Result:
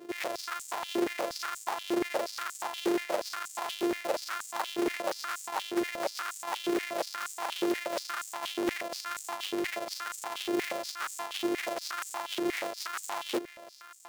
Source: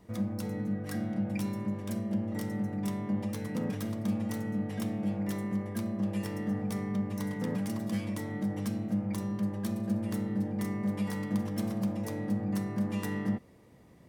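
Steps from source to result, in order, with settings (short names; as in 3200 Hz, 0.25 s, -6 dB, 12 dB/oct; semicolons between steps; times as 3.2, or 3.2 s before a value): sample sorter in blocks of 128 samples; reverse; compressor 5:1, threshold -42 dBFS, peak gain reduction 15 dB; reverse; wrapped overs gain 36.5 dB; vibrato 2.1 Hz 18 cents; stepped high-pass 8.4 Hz 370–7400 Hz; gain +9 dB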